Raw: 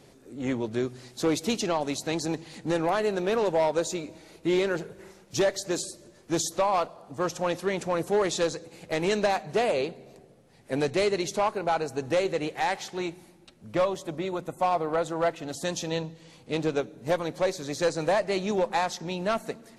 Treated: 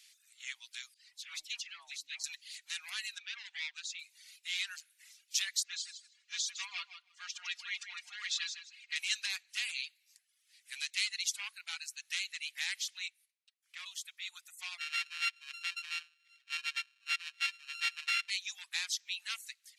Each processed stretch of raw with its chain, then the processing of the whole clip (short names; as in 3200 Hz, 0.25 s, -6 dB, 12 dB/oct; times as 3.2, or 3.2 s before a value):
0.94–2.24 tilt -4.5 dB/oct + dispersion lows, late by 0.148 s, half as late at 900 Hz
3.18–3.99 HPF 730 Hz + air absorption 140 m + core saturation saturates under 1700 Hz
5.63–8.96 air absorption 150 m + comb 4.2 ms, depth 84% + feedback echo 0.158 s, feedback 23%, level -8 dB
13.08–13.86 high shelf 2100 Hz -9.5 dB + gate -54 dBFS, range -9 dB
14.78–18.3 sample sorter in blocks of 32 samples + LPF 2400 Hz + tilt +2.5 dB/oct
whole clip: reverb removal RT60 0.69 s; inverse Chebyshev high-pass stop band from 510 Hz, stop band 70 dB; gain +2.5 dB